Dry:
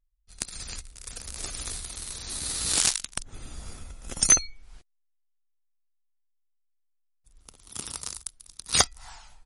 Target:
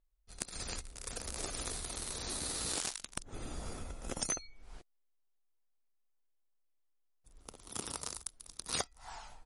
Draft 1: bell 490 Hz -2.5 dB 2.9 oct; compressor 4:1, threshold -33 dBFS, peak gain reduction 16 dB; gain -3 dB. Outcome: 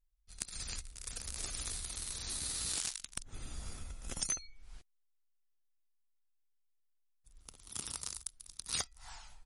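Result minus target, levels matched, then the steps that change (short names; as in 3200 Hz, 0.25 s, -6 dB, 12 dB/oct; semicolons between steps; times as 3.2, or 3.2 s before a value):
500 Hz band -10.5 dB
change: bell 490 Hz +9.5 dB 2.9 oct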